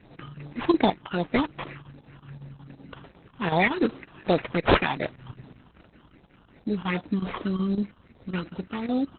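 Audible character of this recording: phasing stages 6, 2.6 Hz, lowest notch 520–1600 Hz; aliases and images of a low sample rate 4.3 kHz, jitter 0%; chopped level 5.4 Hz, depth 65%, duty 85%; Opus

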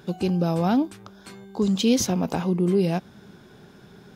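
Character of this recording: noise floor -50 dBFS; spectral tilt -6.0 dB/octave

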